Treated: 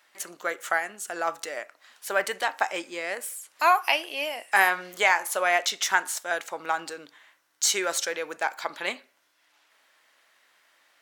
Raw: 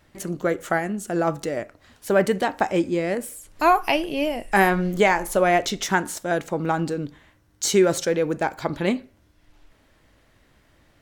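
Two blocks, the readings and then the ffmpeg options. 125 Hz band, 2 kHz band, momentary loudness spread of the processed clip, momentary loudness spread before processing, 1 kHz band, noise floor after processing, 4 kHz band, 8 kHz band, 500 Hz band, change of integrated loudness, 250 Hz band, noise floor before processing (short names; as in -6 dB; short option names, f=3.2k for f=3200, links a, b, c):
under -25 dB, +1.0 dB, 14 LU, 10 LU, -3.0 dB, -67 dBFS, +1.5 dB, +1.5 dB, -9.5 dB, -3.5 dB, -19.0 dB, -60 dBFS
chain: -af "highpass=980,volume=1.5dB"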